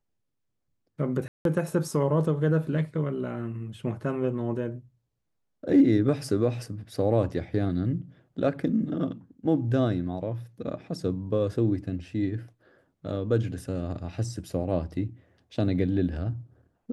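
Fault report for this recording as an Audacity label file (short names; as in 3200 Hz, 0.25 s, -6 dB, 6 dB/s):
1.280000	1.450000	gap 0.172 s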